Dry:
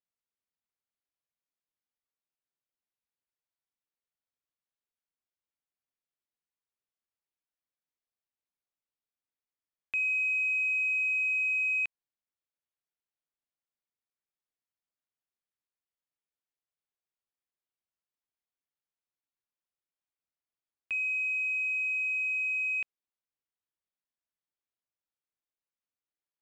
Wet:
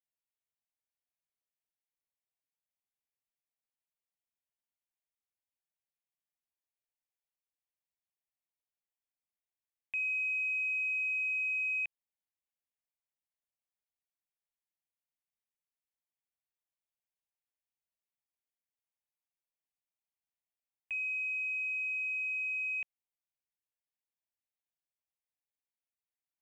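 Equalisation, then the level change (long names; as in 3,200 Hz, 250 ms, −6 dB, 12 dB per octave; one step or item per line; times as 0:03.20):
phaser with its sweep stopped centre 1,300 Hz, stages 6
−4.0 dB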